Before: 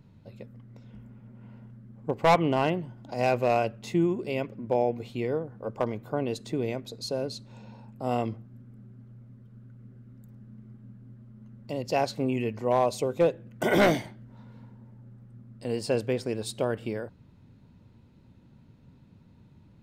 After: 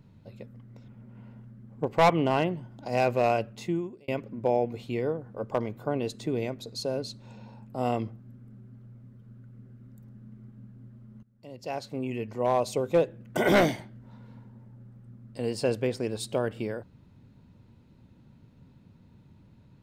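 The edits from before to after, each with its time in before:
0.88–1.14 cut
3.74–4.34 fade out
11.49–13.02 fade in, from -21 dB

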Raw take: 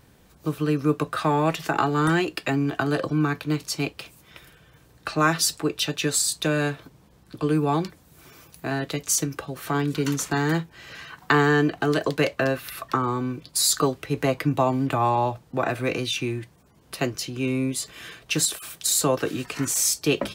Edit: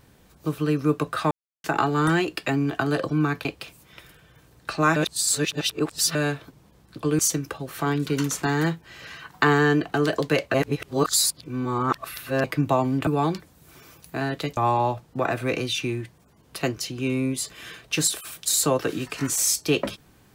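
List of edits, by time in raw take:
1.31–1.64 mute
3.45–3.83 cut
5.34–6.53 reverse
7.57–9.07 move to 14.95
12.42–14.32 reverse

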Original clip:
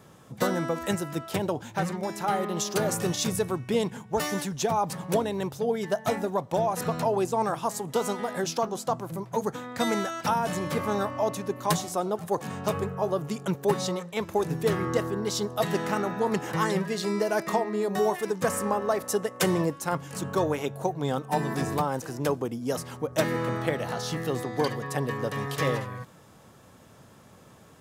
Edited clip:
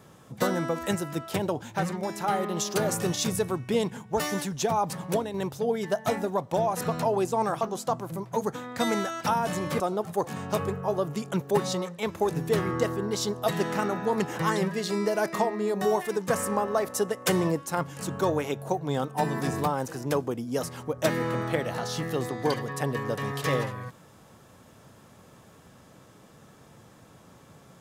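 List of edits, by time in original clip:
5.06–5.34 fade out, to -6.5 dB
7.61–8.61 cut
10.8–11.94 cut

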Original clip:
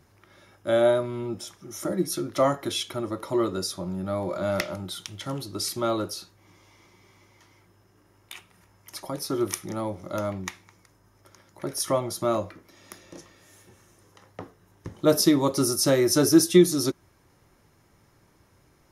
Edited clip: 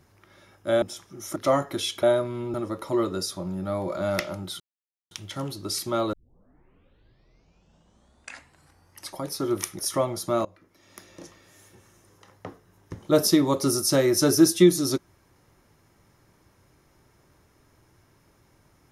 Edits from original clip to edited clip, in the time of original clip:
0.82–1.33 move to 2.95
1.87–2.28 cut
5.01 insert silence 0.51 s
6.03 tape start 3.05 s
9.69–11.73 cut
12.39–13.06 fade in linear, from -22 dB

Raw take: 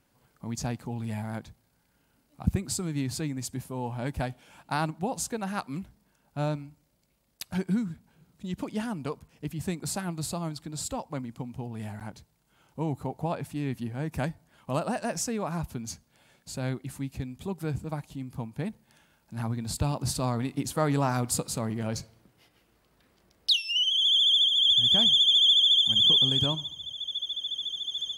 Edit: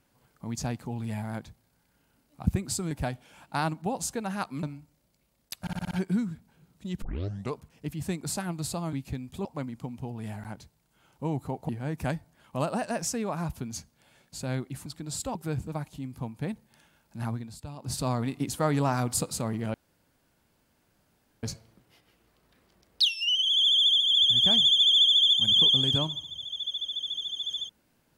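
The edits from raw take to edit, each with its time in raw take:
2.91–4.08 cut
5.8–6.52 cut
7.5 stutter 0.06 s, 6 plays
8.61 tape start 0.51 s
10.52–11.01 swap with 17–17.52
13.25–13.83 cut
19.44–20.2 dip -13.5 dB, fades 0.27 s
21.91 insert room tone 1.69 s

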